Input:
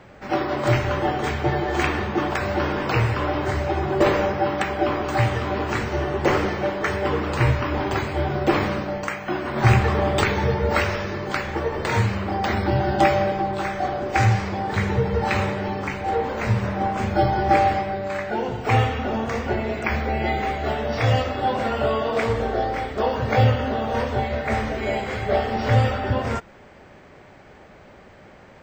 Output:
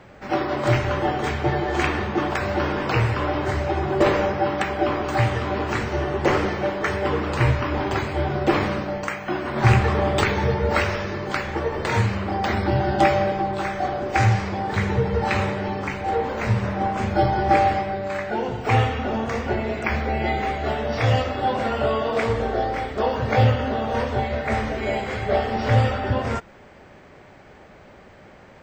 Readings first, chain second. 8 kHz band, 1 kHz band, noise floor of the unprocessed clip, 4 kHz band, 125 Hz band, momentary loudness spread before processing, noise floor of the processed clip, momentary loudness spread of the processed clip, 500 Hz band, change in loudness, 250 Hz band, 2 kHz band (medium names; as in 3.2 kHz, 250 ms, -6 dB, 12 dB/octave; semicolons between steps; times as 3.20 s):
-0.5 dB, 0.0 dB, -47 dBFS, 0.0 dB, 0.0 dB, 7 LU, -47 dBFS, 7 LU, 0.0 dB, 0.0 dB, 0.0 dB, 0.0 dB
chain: loudspeaker Doppler distortion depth 0.12 ms